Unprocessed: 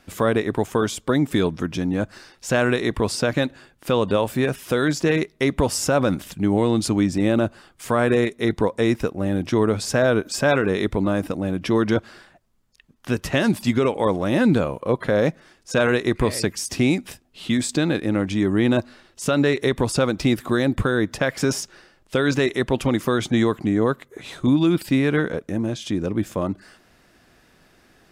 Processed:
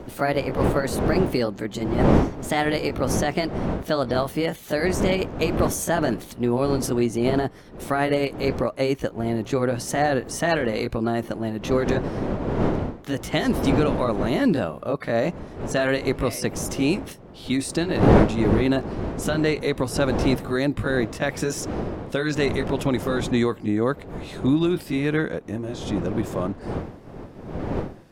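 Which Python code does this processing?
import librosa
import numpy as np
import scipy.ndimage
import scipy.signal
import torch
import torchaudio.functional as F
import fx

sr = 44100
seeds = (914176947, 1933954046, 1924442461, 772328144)

y = fx.pitch_glide(x, sr, semitones=4.0, runs='ending unshifted')
y = fx.dmg_wind(y, sr, seeds[0], corner_hz=400.0, level_db=-26.0)
y = F.gain(torch.from_numpy(y), -2.0).numpy()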